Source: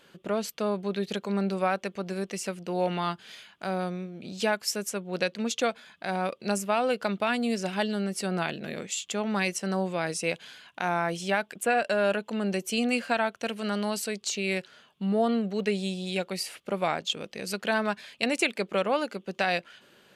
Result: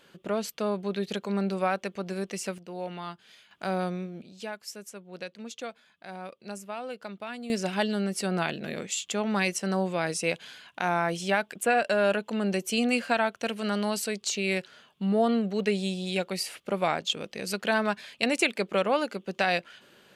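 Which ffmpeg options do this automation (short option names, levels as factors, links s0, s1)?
-af "asetnsamples=n=441:p=0,asendcmd='2.58 volume volume -8.5dB;3.51 volume volume 1dB;4.22 volume volume -11dB;7.5 volume volume 1dB',volume=0.944"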